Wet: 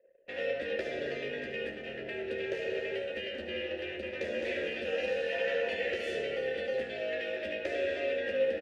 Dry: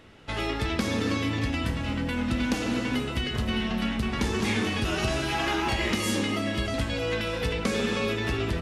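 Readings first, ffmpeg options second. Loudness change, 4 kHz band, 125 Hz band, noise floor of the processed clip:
-6.5 dB, -10.5 dB, -24.0 dB, -42 dBFS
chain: -filter_complex "[0:a]aeval=exprs='val(0)*sin(2*PI*140*n/s)':c=same,asplit=3[s0][s1][s2];[s0]bandpass=f=530:t=q:w=8,volume=1[s3];[s1]bandpass=f=1840:t=q:w=8,volume=0.501[s4];[s2]bandpass=f=2480:t=q:w=8,volume=0.355[s5];[s3][s4][s5]amix=inputs=3:normalize=0,aecho=1:1:13|73:0.447|0.299,anlmdn=0.0000398,volume=2.24"

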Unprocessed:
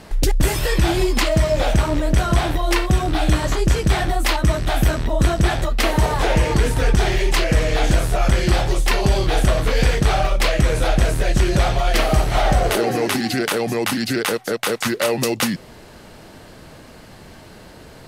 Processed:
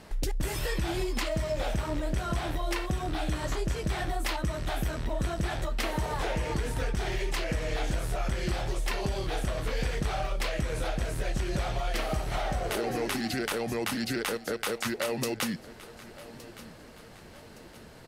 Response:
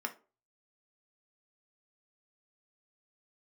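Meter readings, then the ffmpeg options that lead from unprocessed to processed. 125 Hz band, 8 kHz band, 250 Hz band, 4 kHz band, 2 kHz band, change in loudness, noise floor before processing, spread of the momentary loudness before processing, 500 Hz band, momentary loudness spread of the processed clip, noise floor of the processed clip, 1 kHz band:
-13.5 dB, -11.5 dB, -12.0 dB, -12.0 dB, -11.5 dB, -12.5 dB, -42 dBFS, 3 LU, -12.0 dB, 15 LU, -49 dBFS, -12.0 dB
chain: -filter_complex "[0:a]asplit=2[s0][s1];[1:a]atrim=start_sample=2205[s2];[s1][s2]afir=irnorm=-1:irlink=0,volume=0.0944[s3];[s0][s3]amix=inputs=2:normalize=0,acompressor=threshold=0.141:ratio=6,asplit=2[s4][s5];[s5]aecho=0:1:1166|2332|3498|4664:0.126|0.0567|0.0255|0.0115[s6];[s4][s6]amix=inputs=2:normalize=0,volume=0.355"

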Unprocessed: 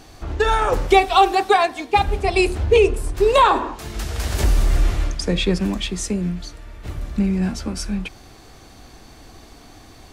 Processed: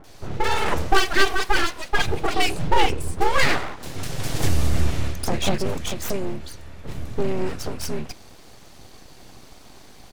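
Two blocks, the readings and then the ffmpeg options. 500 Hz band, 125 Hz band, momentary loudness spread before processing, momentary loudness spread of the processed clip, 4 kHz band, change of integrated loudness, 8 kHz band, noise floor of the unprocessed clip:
-8.0 dB, -3.0 dB, 14 LU, 13 LU, -0.5 dB, -5.0 dB, 0.0 dB, -45 dBFS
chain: -filter_complex "[0:a]acrossover=split=1300[s0][s1];[s1]adelay=40[s2];[s0][s2]amix=inputs=2:normalize=0,aeval=exprs='abs(val(0))':c=same"

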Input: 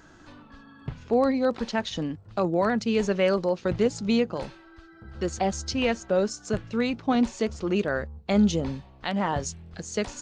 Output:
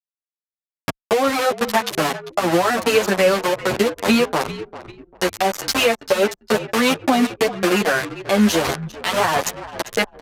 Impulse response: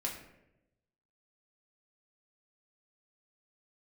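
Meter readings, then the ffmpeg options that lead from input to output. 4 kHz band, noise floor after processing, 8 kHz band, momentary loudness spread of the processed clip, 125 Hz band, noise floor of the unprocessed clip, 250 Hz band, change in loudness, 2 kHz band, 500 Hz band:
+12.0 dB, under -85 dBFS, +10.5 dB, 8 LU, +2.0 dB, -52 dBFS, +4.0 dB, +7.0 dB, +12.5 dB, +7.0 dB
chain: -filter_complex "[0:a]aeval=exprs='val(0)*gte(abs(val(0)),0.0473)':c=same,acontrast=77,highpass=f=770:p=1,aresample=32000,aresample=44100,highshelf=f=2300:g=-4,acompressor=threshold=0.0316:ratio=8,aphaser=in_gain=1:out_gain=1:delay=4.6:decay=0.31:speed=1.6:type=sinusoidal,asplit=6[s0][s1][s2][s3][s4][s5];[s1]adelay=396,afreqshift=-48,volume=0.188[s6];[s2]adelay=792,afreqshift=-96,volume=0.104[s7];[s3]adelay=1188,afreqshift=-144,volume=0.0569[s8];[s4]adelay=1584,afreqshift=-192,volume=0.0313[s9];[s5]adelay=1980,afreqshift=-240,volume=0.0172[s10];[s0][s6][s7][s8][s9][s10]amix=inputs=6:normalize=0,anlmdn=0.01,alimiter=level_in=9.44:limit=0.891:release=50:level=0:latency=1,asplit=2[s11][s12];[s12]adelay=9.4,afreqshift=0.44[s13];[s11][s13]amix=inputs=2:normalize=1,volume=0.891"

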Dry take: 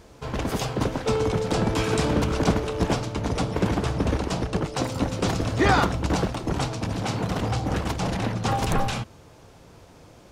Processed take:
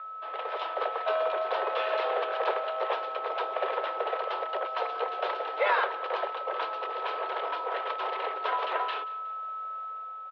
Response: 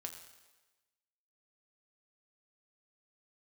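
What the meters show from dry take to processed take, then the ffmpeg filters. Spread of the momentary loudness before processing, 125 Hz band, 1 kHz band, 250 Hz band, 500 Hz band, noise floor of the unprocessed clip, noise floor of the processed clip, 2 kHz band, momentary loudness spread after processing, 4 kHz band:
5 LU, under -40 dB, 0.0 dB, -27.5 dB, -3.5 dB, -50 dBFS, -39 dBFS, -2.5 dB, 7 LU, -7.0 dB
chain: -filter_complex "[0:a]aeval=exprs='val(0)+0.0316*sin(2*PI*1100*n/s)':c=same,dynaudnorm=f=150:g=7:m=1.58,asplit=2[s0][s1];[s1]aecho=0:1:182|364|546:0.112|0.0482|0.0207[s2];[s0][s2]amix=inputs=2:normalize=0,highpass=f=270:t=q:w=0.5412,highpass=f=270:t=q:w=1.307,lowpass=f=3400:t=q:w=0.5176,lowpass=f=3400:t=q:w=0.7071,lowpass=f=3400:t=q:w=1.932,afreqshift=200,volume=0.422"

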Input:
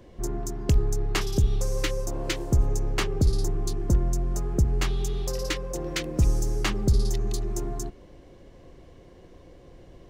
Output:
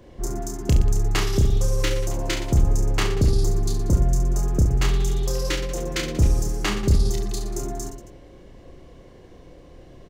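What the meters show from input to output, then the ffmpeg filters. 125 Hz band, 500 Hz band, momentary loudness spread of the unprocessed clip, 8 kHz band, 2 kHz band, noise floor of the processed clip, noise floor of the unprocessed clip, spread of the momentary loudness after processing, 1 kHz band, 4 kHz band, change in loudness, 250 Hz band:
+4.0 dB, +3.0 dB, 7 LU, +3.5 dB, +3.5 dB, -47 dBFS, -50 dBFS, 9 LU, +4.0 dB, +3.5 dB, +4.0 dB, +3.5 dB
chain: -af "aecho=1:1:30|69|119.7|185.6|271.3:0.631|0.398|0.251|0.158|0.1,volume=1.19"

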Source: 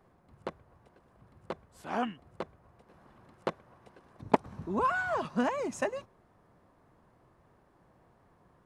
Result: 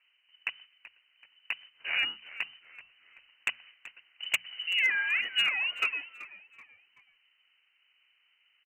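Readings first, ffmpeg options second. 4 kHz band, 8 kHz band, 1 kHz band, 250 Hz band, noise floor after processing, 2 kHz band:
+20.5 dB, +3.0 dB, -13.0 dB, under -25 dB, -71 dBFS, +10.0 dB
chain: -filter_complex "[0:a]agate=range=0.251:threshold=0.002:ratio=16:detection=peak,lowpass=f=2600:t=q:w=0.5098,lowpass=f=2600:t=q:w=0.6013,lowpass=f=2600:t=q:w=0.9,lowpass=f=2600:t=q:w=2.563,afreqshift=-3100,asplit=2[s0][s1];[s1]acompressor=threshold=0.0112:ratio=12,volume=1.12[s2];[s0][s2]amix=inputs=2:normalize=0,volume=8.91,asoftclip=hard,volume=0.112,bandreject=f=60:t=h:w=6,bandreject=f=120:t=h:w=6,bandreject=f=180:t=h:w=6,bandreject=f=240:t=h:w=6,asplit=4[s3][s4][s5][s6];[s4]adelay=381,afreqshift=-95,volume=0.141[s7];[s5]adelay=762,afreqshift=-190,volume=0.0537[s8];[s6]adelay=1143,afreqshift=-285,volume=0.0204[s9];[s3][s7][s8][s9]amix=inputs=4:normalize=0"

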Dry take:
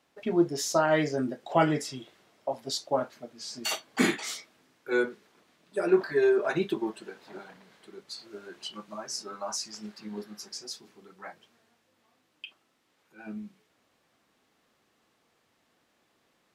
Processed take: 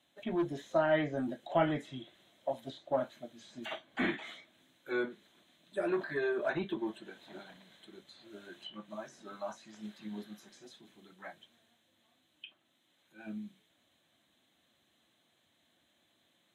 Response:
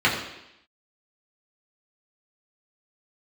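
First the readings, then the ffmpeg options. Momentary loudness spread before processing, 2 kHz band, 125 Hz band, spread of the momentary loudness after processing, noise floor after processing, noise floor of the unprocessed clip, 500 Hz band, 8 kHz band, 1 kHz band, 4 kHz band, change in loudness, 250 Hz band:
22 LU, -5.5 dB, -6.0 dB, 22 LU, -74 dBFS, -72 dBFS, -6.5 dB, -23.5 dB, -6.5 dB, -11.0 dB, -6.5 dB, -6.5 dB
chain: -filter_complex "[0:a]acrossover=split=3100[s0][s1];[s1]acompressor=threshold=0.00355:ratio=4:attack=1:release=60[s2];[s0][s2]amix=inputs=2:normalize=0,superequalizer=7b=0.447:9b=0.631:10b=0.562:13b=2.24:14b=0.316,acrossover=split=530|2700[s3][s4][s5];[s3]asoftclip=type=tanh:threshold=0.0398[s6];[s5]acompressor=threshold=0.00158:ratio=6[s7];[s6][s4][s7]amix=inputs=3:normalize=0,volume=0.75" -ar 44100 -c:a libvorbis -b:a 64k

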